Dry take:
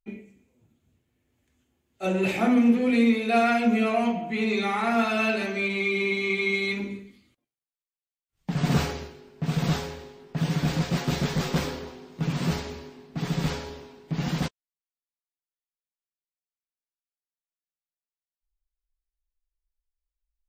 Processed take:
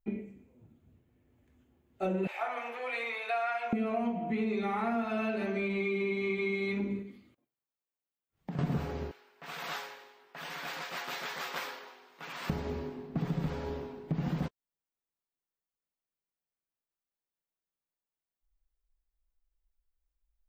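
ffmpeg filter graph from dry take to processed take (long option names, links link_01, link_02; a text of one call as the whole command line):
ffmpeg -i in.wav -filter_complex "[0:a]asettb=1/sr,asplit=3[link_01][link_02][link_03];[link_01]atrim=end=2.274[link_04];[link_02]atrim=start=2.27:end=3.73,asetpts=PTS-STARTPTS,afade=type=in:duration=0.004:curve=qsin,afade=type=out:start_time=1.456:duration=0.004:curve=qsin,highpass=frequency=770:width=0.5412,highpass=frequency=770:width=1.3066,highshelf=frequency=4700:gain=-5[link_05];[link_03]atrim=start=3.726[link_06];[link_04][link_05]acrossfade=duration=0.004:curve1=hsin:curve2=qsin[link_07];[link_07][link_06]acrossfade=duration=0.004:curve1=qsin:curve2=hsin,asettb=1/sr,asplit=3[link_08][link_09][link_10];[link_08]atrim=end=7.024[link_11];[link_09]atrim=start=7.02:end=8.59,asetpts=PTS-STARTPTS,afade=type=in:duration=0.004:curve=qsin,afade=type=out:start_time=1.566:duration=0.004:curve=qsin,highpass=frequency=150:poles=1,acompressor=threshold=-45dB:ratio=2.5:attack=3.2:release=140:knee=1:detection=peak[link_12];[link_10]atrim=start=8.586[link_13];[link_11][link_12]acrossfade=duration=0.004:curve1=hsin:curve2=qsin[link_14];[link_14][link_13]acrossfade=duration=0.004:curve1=qsin:curve2=hsin,asettb=1/sr,asplit=3[link_15][link_16][link_17];[link_15]atrim=end=9.114[link_18];[link_16]atrim=start=9.11:end=12.5,asetpts=PTS-STARTPTS,afade=type=in:duration=0.004:curve=qsin,afade=type=out:start_time=3.386:duration=0.004:curve=qsin,highpass=1300,equalizer=frequency=12000:width=2.4:gain=3[link_19];[link_17]atrim=start=12.496[link_20];[link_18][link_19]acrossfade=duration=0.004:curve1=hsin:curve2=qsin[link_21];[link_21][link_20]acrossfade=duration=0.004:curve1=qsin:curve2=hsin,equalizer=frequency=7100:width_type=o:width=3:gain=-15,acompressor=threshold=-35dB:ratio=5,volume=5dB" out.wav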